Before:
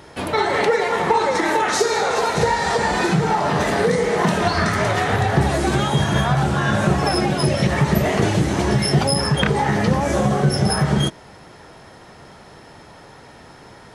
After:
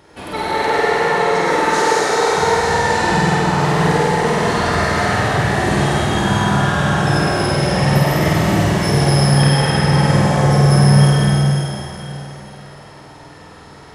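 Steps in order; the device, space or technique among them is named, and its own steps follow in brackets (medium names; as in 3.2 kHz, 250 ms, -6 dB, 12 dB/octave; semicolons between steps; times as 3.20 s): tunnel (flutter echo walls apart 8.5 m, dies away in 0.98 s; reverberation RT60 3.7 s, pre-delay 86 ms, DRR -5 dB); trim -6 dB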